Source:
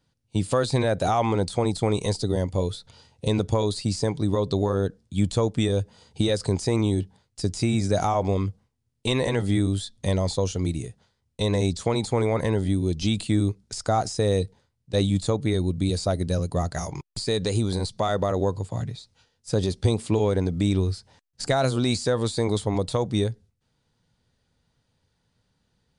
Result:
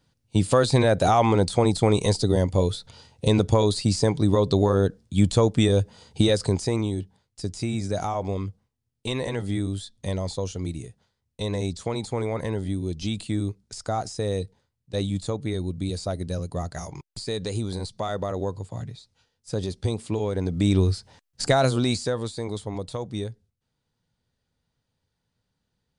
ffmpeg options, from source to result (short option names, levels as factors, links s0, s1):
-af "volume=3.76,afade=t=out:st=6.22:d=0.69:silence=0.398107,afade=t=in:st=20.33:d=0.49:silence=0.398107,afade=t=out:st=21.45:d=0.88:silence=0.298538"